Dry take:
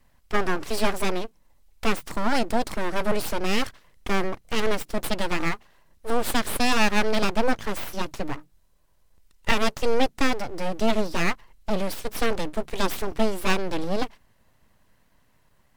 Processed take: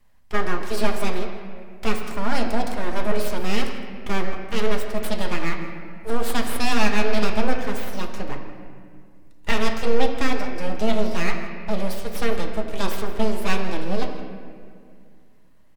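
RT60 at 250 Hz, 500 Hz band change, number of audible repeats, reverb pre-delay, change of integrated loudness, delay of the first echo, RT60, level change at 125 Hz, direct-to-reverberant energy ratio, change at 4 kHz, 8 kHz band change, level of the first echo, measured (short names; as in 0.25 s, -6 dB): 2.7 s, +1.0 dB, 1, 5 ms, 0.0 dB, 0.164 s, 2.1 s, +2.5 dB, 2.0 dB, -1.0 dB, -2.0 dB, -15.5 dB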